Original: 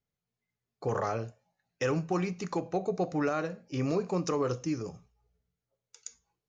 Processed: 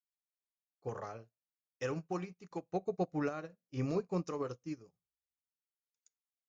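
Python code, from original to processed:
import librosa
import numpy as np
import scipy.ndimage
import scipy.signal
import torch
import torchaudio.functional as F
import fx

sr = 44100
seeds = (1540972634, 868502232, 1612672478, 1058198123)

y = fx.low_shelf(x, sr, hz=170.0, db=5.5, at=(2.71, 4.24))
y = fx.upward_expand(y, sr, threshold_db=-48.0, expansion=2.5)
y = y * librosa.db_to_amplitude(-3.5)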